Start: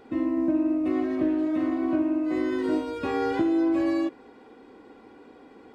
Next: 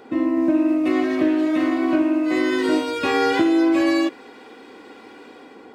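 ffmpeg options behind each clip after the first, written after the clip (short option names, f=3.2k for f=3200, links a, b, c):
-filter_complex "[0:a]highpass=f=230:p=1,acrossover=split=1700[a][b];[b]dynaudnorm=f=180:g=5:m=8dB[c];[a][c]amix=inputs=2:normalize=0,volume=7.5dB"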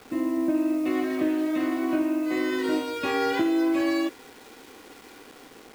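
-af "acrusher=bits=6:mix=0:aa=0.000001,volume=-6dB"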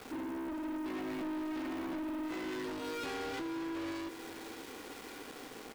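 -af "acompressor=threshold=-28dB:ratio=6,asoftclip=type=tanh:threshold=-38.5dB,aecho=1:1:527:0.251,volume=1dB"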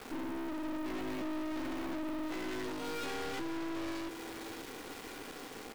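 -af "aeval=exprs='clip(val(0),-1,0.00376)':c=same,volume=3.5dB"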